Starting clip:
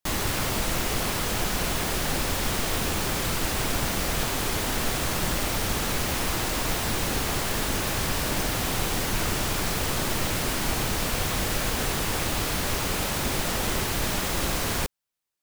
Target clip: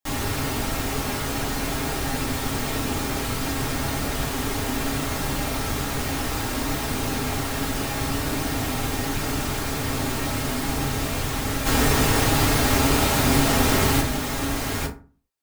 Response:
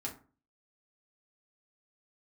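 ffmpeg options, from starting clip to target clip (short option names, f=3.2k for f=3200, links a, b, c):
-filter_complex "[0:a]asplit=3[a][b][c];[a]afade=t=out:st=11.65:d=0.02[d];[b]acontrast=81,afade=t=in:st=11.65:d=0.02,afade=t=out:st=14:d=0.02[e];[c]afade=t=in:st=14:d=0.02[f];[d][e][f]amix=inputs=3:normalize=0[g];[1:a]atrim=start_sample=2205[h];[g][h]afir=irnorm=-1:irlink=0"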